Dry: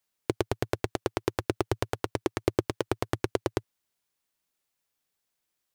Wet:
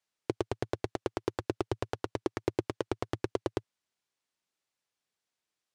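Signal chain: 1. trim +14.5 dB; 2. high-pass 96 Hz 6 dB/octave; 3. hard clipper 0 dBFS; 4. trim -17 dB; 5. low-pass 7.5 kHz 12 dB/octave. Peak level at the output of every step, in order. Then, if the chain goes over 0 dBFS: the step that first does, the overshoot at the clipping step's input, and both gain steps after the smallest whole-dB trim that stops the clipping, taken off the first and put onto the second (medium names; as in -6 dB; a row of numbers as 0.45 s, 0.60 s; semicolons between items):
+6.5 dBFS, +6.0 dBFS, 0.0 dBFS, -17.0 dBFS, -16.5 dBFS; step 1, 6.0 dB; step 1 +8.5 dB, step 4 -11 dB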